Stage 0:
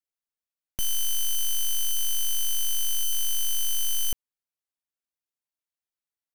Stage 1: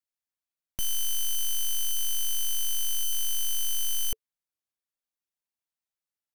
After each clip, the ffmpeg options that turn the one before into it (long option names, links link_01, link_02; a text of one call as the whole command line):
ffmpeg -i in.wav -af "bandreject=frequency=440:width=12,volume=-2dB" out.wav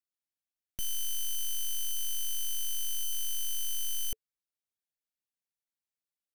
ffmpeg -i in.wav -af "equalizer=frequency=1000:width=1.9:gain=-8,volume=-5dB" out.wav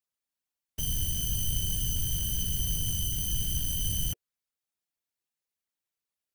ffmpeg -i in.wav -af "afftfilt=real='hypot(re,im)*cos(2*PI*random(0))':imag='hypot(re,im)*sin(2*PI*random(1))':win_size=512:overlap=0.75,volume=8.5dB" out.wav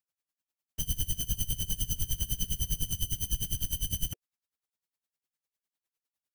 ffmpeg -i in.wav -af "aeval=exprs='val(0)*pow(10,-21*(0.5-0.5*cos(2*PI*9.9*n/s))/20)':channel_layout=same,volume=3dB" out.wav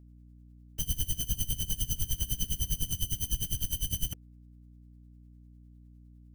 ffmpeg -i in.wav -af "aeval=exprs='val(0)+0.00251*(sin(2*PI*60*n/s)+sin(2*PI*2*60*n/s)/2+sin(2*PI*3*60*n/s)/3+sin(2*PI*4*60*n/s)/4+sin(2*PI*5*60*n/s)/5)':channel_layout=same" out.wav